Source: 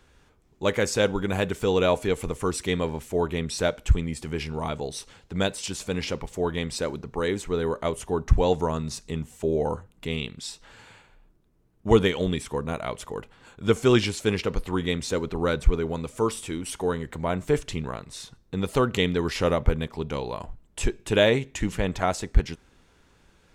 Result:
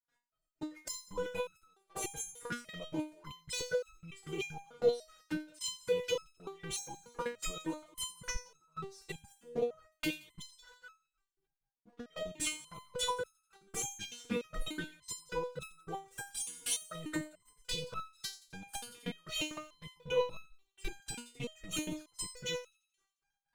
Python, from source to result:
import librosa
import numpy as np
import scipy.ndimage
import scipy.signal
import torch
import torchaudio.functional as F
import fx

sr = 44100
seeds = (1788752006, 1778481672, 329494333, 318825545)

y = fx.highpass(x, sr, hz=82.0, slope=6)
y = fx.peak_eq(y, sr, hz=1400.0, db=9.0, octaves=0.34)
y = y + 0.99 * np.pad(y, (int(6.1 * sr / 1000.0), 0))[:len(y)]
y = fx.over_compress(y, sr, threshold_db=-27.0, ratio=-0.5)
y = fx.leveller(y, sr, passes=3)
y = fx.level_steps(y, sr, step_db=24)
y = fx.step_gate(y, sr, bpm=190, pattern='.x..xx.x..', floor_db=-24.0, edge_ms=4.5)
y = fx.env_flanger(y, sr, rest_ms=7.4, full_db=-23.5)
y = fx.echo_wet_highpass(y, sr, ms=87, feedback_pct=52, hz=3900.0, wet_db=-14)
y = fx.resonator_held(y, sr, hz=3.4, low_hz=240.0, high_hz=1300.0)
y = y * librosa.db_to_amplitude(9.5)